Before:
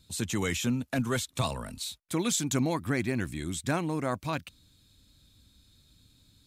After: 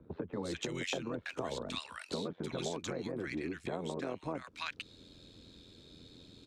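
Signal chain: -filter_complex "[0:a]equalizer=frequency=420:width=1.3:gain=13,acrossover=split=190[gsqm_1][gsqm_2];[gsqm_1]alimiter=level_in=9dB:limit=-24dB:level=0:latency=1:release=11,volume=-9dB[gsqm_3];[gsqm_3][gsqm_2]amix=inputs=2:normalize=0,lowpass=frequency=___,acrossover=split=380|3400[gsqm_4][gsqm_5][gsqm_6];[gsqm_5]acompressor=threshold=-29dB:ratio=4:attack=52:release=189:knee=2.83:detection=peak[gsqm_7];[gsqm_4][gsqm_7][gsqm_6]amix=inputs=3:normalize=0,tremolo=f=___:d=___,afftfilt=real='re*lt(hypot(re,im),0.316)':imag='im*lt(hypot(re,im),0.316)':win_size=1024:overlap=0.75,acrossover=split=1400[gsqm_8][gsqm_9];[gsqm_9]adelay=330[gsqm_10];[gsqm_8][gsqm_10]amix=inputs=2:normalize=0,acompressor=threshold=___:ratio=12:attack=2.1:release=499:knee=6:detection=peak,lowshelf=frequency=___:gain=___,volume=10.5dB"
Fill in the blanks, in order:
4600, 86, 0.667, -40dB, 120, -10.5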